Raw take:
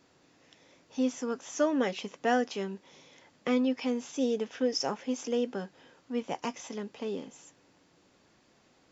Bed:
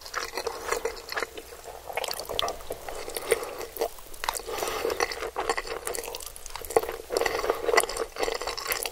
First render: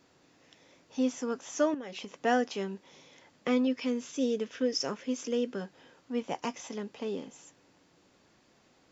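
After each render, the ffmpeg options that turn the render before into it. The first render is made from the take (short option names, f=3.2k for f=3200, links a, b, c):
-filter_complex "[0:a]asettb=1/sr,asplit=3[a][b][c];[a]atrim=end=1.744[d];[b]atrim=start=1.74:end=2.22,asetpts=PTS-STARTPTS,afade=t=in:d=0.004:c=qsin,afade=t=out:st=0.476:d=0.004:c=qsin,acompressor=threshold=-36dB:ratio=12:attack=3.2:release=140:knee=1:detection=peak[e];[c]atrim=start=2.216[f];[d][e]acrossfade=d=0.004:c1=hsin:c2=qsin[g];[g][f]acrossfade=d=0.004:c1=qsin:c2=hsin,asettb=1/sr,asplit=3[h][i][j];[h]atrim=end=3.674[k];[i]atrim=start=3.67:end=5.61,asetpts=PTS-STARTPTS,afade=t=in:d=0.004:c=qsin,afade=t=out:st=1.936:d=0.004:c=qsin,equalizer=f=800:w=3.6:g=-11.5[l];[j]atrim=start=5.606[m];[k][l]acrossfade=d=0.004:c1=hsin:c2=qsin[n];[n][m]acrossfade=d=0.004:c1=qsin:c2=hsin"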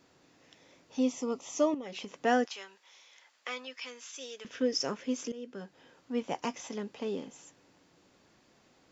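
-filter_complex "[0:a]asettb=1/sr,asplit=3[a][b][c];[a]atrim=end=1.004[d];[b]atrim=start=1:end=1.86,asetpts=PTS-STARTPTS,afade=t=in:d=0.004:c=qsin,afade=t=out:st=0.856:d=0.004:c=qsin,asuperstop=centerf=1600:order=4:qfactor=2.5[e];[c]atrim=start=1.856[f];[d][e]acrossfade=d=0.004:c1=hsin:c2=qsin[g];[g][f]acrossfade=d=0.004:c1=qsin:c2=hsin,asettb=1/sr,asplit=3[h][i][j];[h]atrim=end=2.454[k];[i]atrim=start=2.45:end=4.45,asetpts=PTS-STARTPTS,afade=t=in:d=0.004:c=qsin,afade=t=out:st=1.996:d=0.004:c=qsin,highpass=1.1k[l];[j]atrim=start=4.446[m];[k][l]acrossfade=d=0.004:c1=hsin:c2=qsin[n];[n][m]acrossfade=d=0.004:c1=qsin:c2=hsin,asplit=2[o][p];[o]atrim=end=5.32,asetpts=PTS-STARTPTS,afade=t=out:st=5.316:d=0.004:c=hsin:silence=0.105925[q];[p]atrim=start=5.32,asetpts=PTS-STARTPTS,afade=t=in:d=0.95:c=qsin:silence=0.105925[r];[q][r]concat=n=2:v=0:a=1"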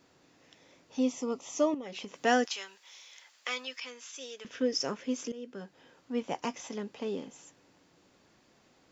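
-filter_complex "[0:a]asettb=1/sr,asplit=3[a][b][c];[a]atrim=end=2.154[d];[b]atrim=start=2.15:end=3.8,asetpts=PTS-STARTPTS,afade=t=in:d=0.004:c=qsin,afade=t=out:st=1.646:d=0.004:c=qsin,highshelf=f=2.3k:g=8.5[e];[c]atrim=start=3.796[f];[d][e]acrossfade=d=0.004:c1=hsin:c2=qsin[g];[g][f]acrossfade=d=0.004:c1=qsin:c2=hsin"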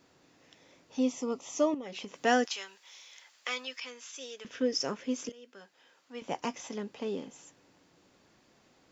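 -filter_complex "[0:a]asettb=1/sr,asplit=3[a][b][c];[a]atrim=end=5.294[d];[b]atrim=start=5.29:end=6.22,asetpts=PTS-STARTPTS,afade=t=in:d=0.004:c=qsin,afade=t=out:st=0.926:d=0.004:c=qsin,highpass=f=1.2k:p=1[e];[c]atrim=start=6.216[f];[d][e]acrossfade=d=0.004:c1=hsin:c2=qsin[g];[g][f]acrossfade=d=0.004:c1=qsin:c2=hsin"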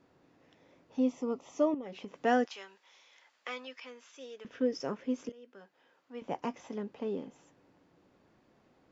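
-af "lowpass=f=1.2k:p=1"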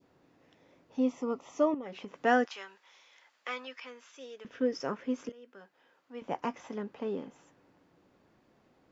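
-af "adynamicequalizer=threshold=0.00282:dfrequency=1400:dqfactor=0.98:tfrequency=1400:tqfactor=0.98:attack=5:release=100:ratio=0.375:range=3:mode=boostabove:tftype=bell"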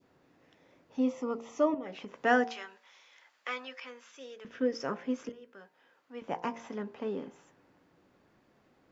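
-af "equalizer=f=1.7k:w=1.5:g=2,bandreject=f=57.61:t=h:w=4,bandreject=f=115.22:t=h:w=4,bandreject=f=172.83:t=h:w=4,bandreject=f=230.44:t=h:w=4,bandreject=f=288.05:t=h:w=4,bandreject=f=345.66:t=h:w=4,bandreject=f=403.27:t=h:w=4,bandreject=f=460.88:t=h:w=4,bandreject=f=518.49:t=h:w=4,bandreject=f=576.1:t=h:w=4,bandreject=f=633.71:t=h:w=4,bandreject=f=691.32:t=h:w=4,bandreject=f=748.93:t=h:w=4,bandreject=f=806.54:t=h:w=4,bandreject=f=864.15:t=h:w=4,bandreject=f=921.76:t=h:w=4,bandreject=f=979.37:t=h:w=4,bandreject=f=1.03698k:t=h:w=4"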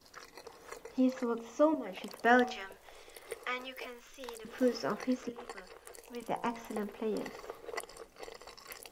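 -filter_complex "[1:a]volume=-19dB[a];[0:a][a]amix=inputs=2:normalize=0"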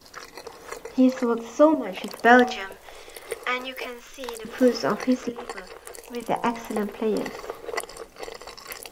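-af "volume=10.5dB"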